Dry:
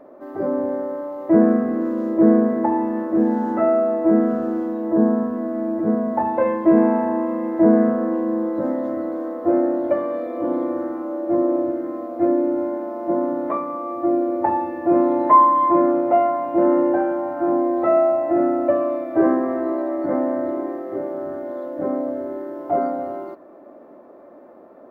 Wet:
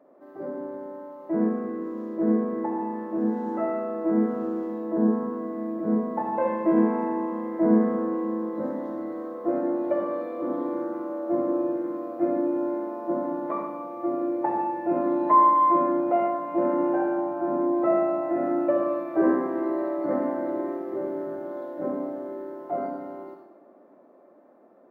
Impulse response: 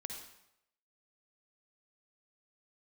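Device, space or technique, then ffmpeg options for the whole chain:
far laptop microphone: -filter_complex "[0:a]asettb=1/sr,asplit=3[link_01][link_02][link_03];[link_01]atrim=end=17.174[link_04];[link_02]atrim=start=17.17:end=18.22,asetpts=PTS-STARTPTS,afade=type=in:duration=0.004:curve=qsin,afade=type=out:start_time=1.046:duration=0.004:curve=qsin,tiltshelf=frequency=970:gain=3[link_05];[link_03]atrim=start=18.216[link_06];[link_04][link_05]acrossfade=duration=0.004:curve1=hsin:curve2=qsin[link_07];[link_07][link_06]acrossfade=duration=0.004:curve1=qsin:curve2=hsin[link_08];[1:a]atrim=start_sample=2205[link_09];[link_08][link_09]afir=irnorm=-1:irlink=0,highpass=frequency=120:width=0.5412,highpass=frequency=120:width=1.3066,dynaudnorm=framelen=470:gausssize=13:maxgain=11.5dB,volume=-8dB"

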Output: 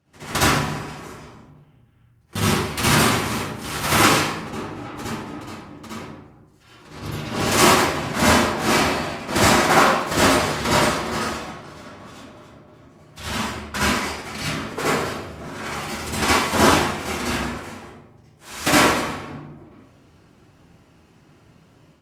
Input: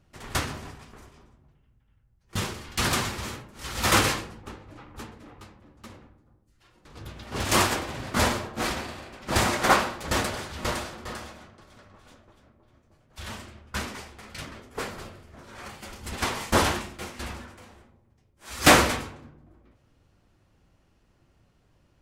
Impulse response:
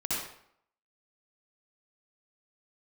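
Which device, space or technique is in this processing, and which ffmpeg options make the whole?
far-field microphone of a smart speaker: -filter_complex "[1:a]atrim=start_sample=2205[link_01];[0:a][link_01]afir=irnorm=-1:irlink=0,highpass=100,dynaudnorm=framelen=160:gausssize=3:maxgain=8dB,volume=-1dB" -ar 48000 -c:a libopus -b:a 48k

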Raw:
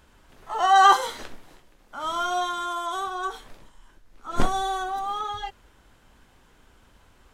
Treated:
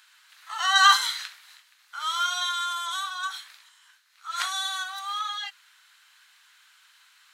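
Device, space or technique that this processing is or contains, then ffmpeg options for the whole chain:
headphones lying on a table: -af "highpass=frequency=1400:width=0.5412,highpass=frequency=1400:width=1.3066,equalizer=frequency=4100:width_type=o:width=0.24:gain=7.5,volume=5.5dB"

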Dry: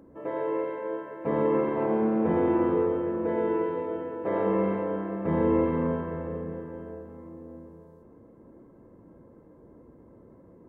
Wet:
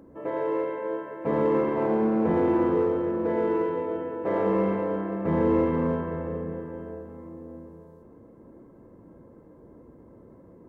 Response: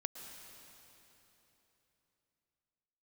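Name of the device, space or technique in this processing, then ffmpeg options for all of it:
parallel distortion: -filter_complex "[0:a]asplit=2[link_01][link_02];[link_02]asoftclip=type=hard:threshold=-26dB,volume=-11dB[link_03];[link_01][link_03]amix=inputs=2:normalize=0"

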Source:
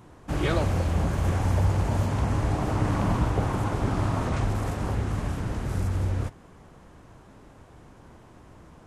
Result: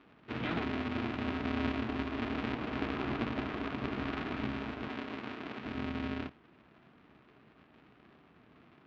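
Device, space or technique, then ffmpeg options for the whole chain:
ring modulator pedal into a guitar cabinet: -filter_complex "[0:a]aeval=exprs='val(0)*sgn(sin(2*PI*170*n/s))':channel_layout=same,highpass=92,equalizer=frequency=98:width_type=q:width=4:gain=-10,equalizer=frequency=530:width_type=q:width=4:gain=-9,equalizer=frequency=870:width_type=q:width=4:gain=-5,equalizer=frequency=2500:width_type=q:width=4:gain=3,lowpass=frequency=3600:width=0.5412,lowpass=frequency=3600:width=1.3066,asettb=1/sr,asplit=3[link_01][link_02][link_03];[link_01]atrim=end=4.884[link_04];[link_02]atrim=start=4.88:end=5.65,asetpts=PTS-STARTPTS,afade=type=in:duration=0.004:curve=qsin,afade=type=out:start_time=0.766:duration=0.004:curve=qsin,highpass=frequency=270:poles=1[link_05];[link_03]atrim=start=5.646[link_06];[link_04][link_05]acrossfade=duration=0.004:curve1=hsin:curve2=qsin[link_07];[link_07][link_06]acrossfade=duration=0.004:curve1=qsin:curve2=hsin,volume=-8.5dB"

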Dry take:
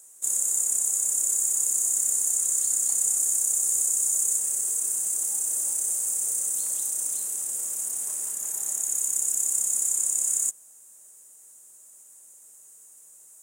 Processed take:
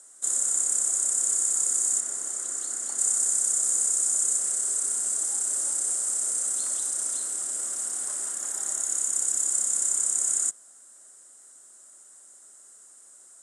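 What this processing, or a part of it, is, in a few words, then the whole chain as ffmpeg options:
television speaker: -filter_complex "[0:a]highpass=frequency=220:width=0.5412,highpass=frequency=220:width=1.3066,equalizer=frequency=460:width_type=q:width=4:gain=-5,equalizer=frequency=910:width_type=q:width=4:gain=-4,equalizer=frequency=1400:width_type=q:width=4:gain=6,equalizer=frequency=2500:width_type=q:width=4:gain=-8,equalizer=frequency=6500:width_type=q:width=4:gain=-8,lowpass=frequency=8100:width=0.5412,lowpass=frequency=8100:width=1.3066,asettb=1/sr,asplit=3[link_01][link_02][link_03];[link_01]atrim=end=2.004[link_04];[link_02]atrim=start=2:end=2.99,asetpts=PTS-STARTPTS,afade=type=in:duration=0.004:curve=qsin,afade=type=out:start_time=0.986:duration=0.004:curve=qsin,highshelf=frequency=4100:gain=-8.5[link_05];[link_03]atrim=start=2.986[link_06];[link_04][link_05]acrossfade=duration=0.004:curve1=hsin:curve2=qsin[link_07];[link_07][link_06]acrossfade=duration=0.004:curve1=qsin:curve2=hsin,volume=6dB"

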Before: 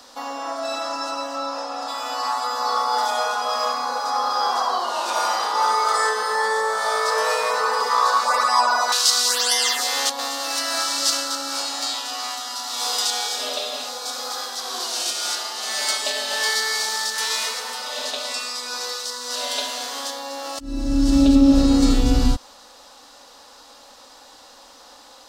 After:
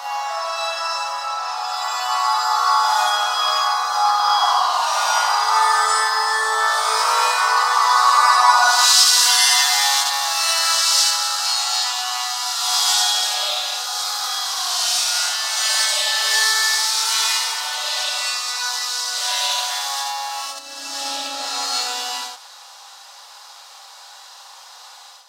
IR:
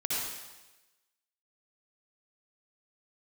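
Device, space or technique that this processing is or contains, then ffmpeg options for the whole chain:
ghost voice: -filter_complex "[0:a]areverse[link_01];[1:a]atrim=start_sample=2205[link_02];[link_01][link_02]afir=irnorm=-1:irlink=0,areverse,highpass=frequency=740:width=0.5412,highpass=frequency=740:width=1.3066,volume=-1dB"

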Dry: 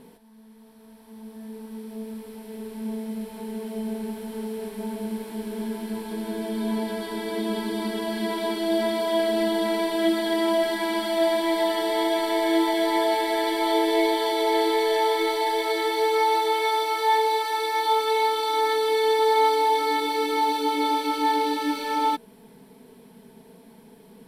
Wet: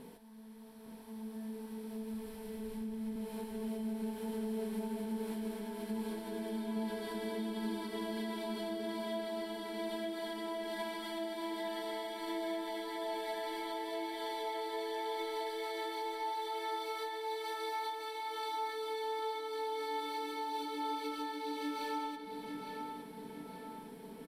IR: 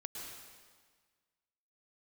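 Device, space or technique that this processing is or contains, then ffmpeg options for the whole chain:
serial compression, peaks first: -filter_complex "[0:a]asettb=1/sr,asplit=3[link_01][link_02][link_03];[link_01]atrim=end=1.784[link_04];[link_02]atrim=start=1.78:end=3.16,asetpts=PTS-STARTPTS,afade=type=in:duration=0.004:curve=qsin,afade=type=out:start_time=1.376:duration=0.004:curve=qsin,asubboost=boost=12:cutoff=180[link_05];[link_03]atrim=start=3.156[link_06];[link_04][link_05]acrossfade=duration=0.004:curve1=hsin:curve2=qsin[link_07];[link_07][link_06]acrossfade=duration=0.004:curve1=qsin:curve2=hsin,acompressor=threshold=-30dB:ratio=6,acompressor=threshold=-43dB:ratio=1.5,asplit=2[link_08][link_09];[link_09]adelay=861,lowpass=frequency=3800:poles=1,volume=-5dB,asplit=2[link_10][link_11];[link_11]adelay=861,lowpass=frequency=3800:poles=1,volume=0.51,asplit=2[link_12][link_13];[link_13]adelay=861,lowpass=frequency=3800:poles=1,volume=0.51,asplit=2[link_14][link_15];[link_15]adelay=861,lowpass=frequency=3800:poles=1,volume=0.51,asplit=2[link_16][link_17];[link_17]adelay=861,lowpass=frequency=3800:poles=1,volume=0.51,asplit=2[link_18][link_19];[link_19]adelay=861,lowpass=frequency=3800:poles=1,volume=0.51[link_20];[link_08][link_10][link_12][link_14][link_16][link_18][link_20]amix=inputs=7:normalize=0,volume=-2.5dB"

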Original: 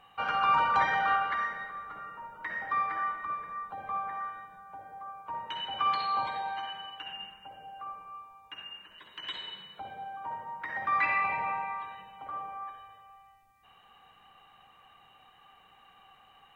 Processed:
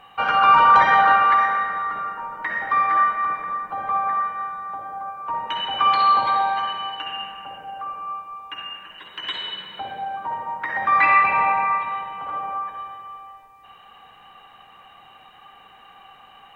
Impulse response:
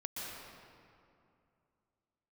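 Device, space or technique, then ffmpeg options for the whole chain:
filtered reverb send: -filter_complex "[0:a]asplit=2[link_01][link_02];[link_02]highpass=160,lowpass=4700[link_03];[1:a]atrim=start_sample=2205[link_04];[link_03][link_04]afir=irnorm=-1:irlink=0,volume=-4dB[link_05];[link_01][link_05]amix=inputs=2:normalize=0,volume=7.5dB"

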